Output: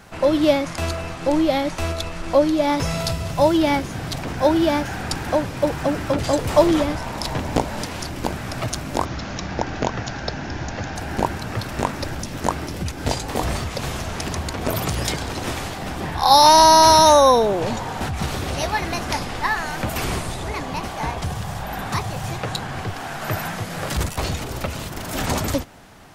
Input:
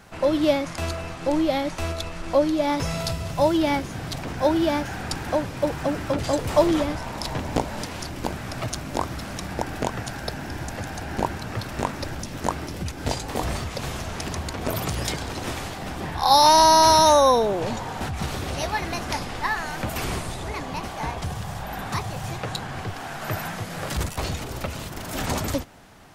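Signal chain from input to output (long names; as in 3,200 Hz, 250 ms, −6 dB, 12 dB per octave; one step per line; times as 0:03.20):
0:09.05–0:10.96: Butterworth low-pass 6,900 Hz 96 dB per octave
level +3.5 dB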